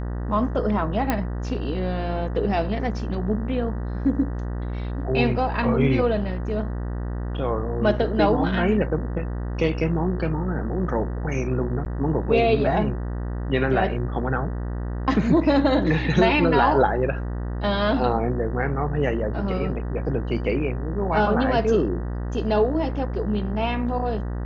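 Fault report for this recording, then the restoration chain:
buzz 60 Hz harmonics 32 -28 dBFS
1.1 pop -8 dBFS
11.85–11.86 gap 9.3 ms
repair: de-click; de-hum 60 Hz, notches 32; interpolate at 11.85, 9.3 ms

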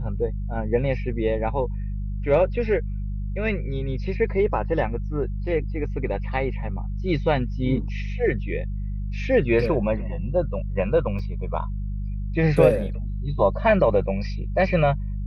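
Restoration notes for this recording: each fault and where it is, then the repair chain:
hum 50 Hz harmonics 4 -28 dBFS
11.19 gap 2.5 ms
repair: de-hum 50 Hz, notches 4; interpolate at 11.19, 2.5 ms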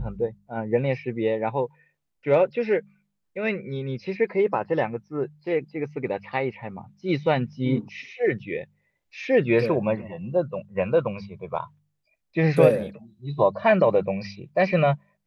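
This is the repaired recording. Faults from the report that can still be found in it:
none

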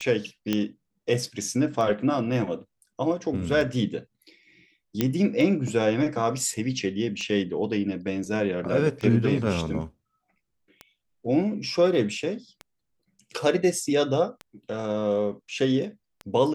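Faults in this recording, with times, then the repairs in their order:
tick 33 1/3 rpm -21 dBFS
0.53 pop -11 dBFS
5.01 pop -8 dBFS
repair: de-click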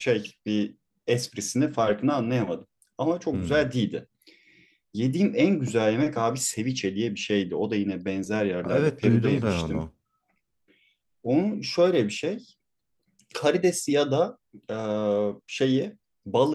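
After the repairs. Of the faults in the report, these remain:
0.53 pop
5.01 pop

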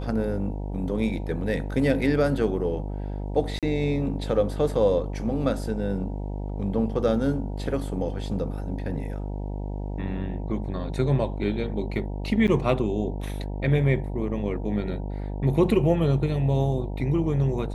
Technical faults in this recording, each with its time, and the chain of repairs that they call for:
buzz 50 Hz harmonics 19 -31 dBFS
3.59–3.63 gap 37 ms
12.47–12.48 gap 8.6 ms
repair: de-hum 50 Hz, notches 19; interpolate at 3.59, 37 ms; interpolate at 12.47, 8.6 ms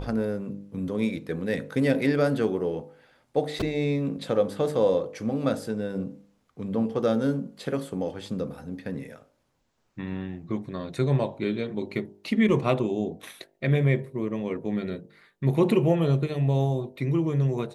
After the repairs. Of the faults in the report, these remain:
none

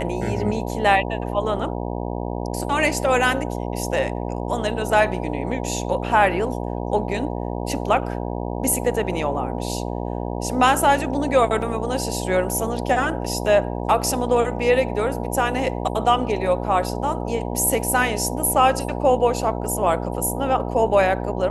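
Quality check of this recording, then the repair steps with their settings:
buzz 60 Hz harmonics 16 -27 dBFS
11.62 gap 2.1 ms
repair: de-hum 60 Hz, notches 16; interpolate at 11.62, 2.1 ms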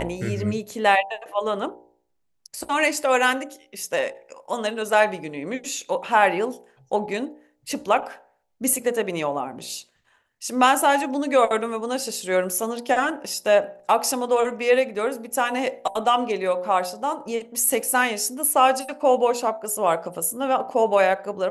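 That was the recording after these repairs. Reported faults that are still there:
none

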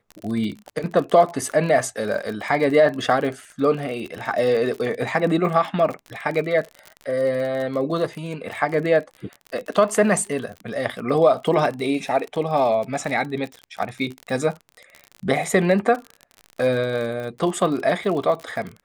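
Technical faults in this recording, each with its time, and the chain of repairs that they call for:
crackle 41/s -28 dBFS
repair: de-click

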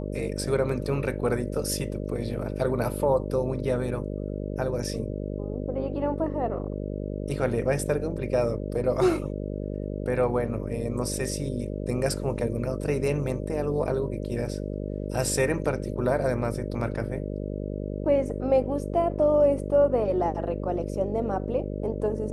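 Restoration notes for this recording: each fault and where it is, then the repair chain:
buzz 50 Hz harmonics 12 -32 dBFS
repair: de-hum 50 Hz, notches 12

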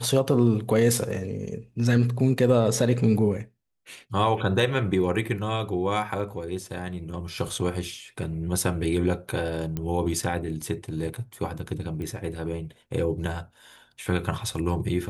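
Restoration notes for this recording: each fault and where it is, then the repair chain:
9.77 pop -17 dBFS
12.02 pop -24 dBFS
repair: de-click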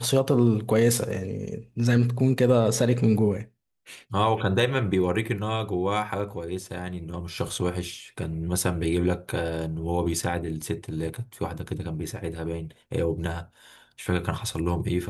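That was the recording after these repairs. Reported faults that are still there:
none

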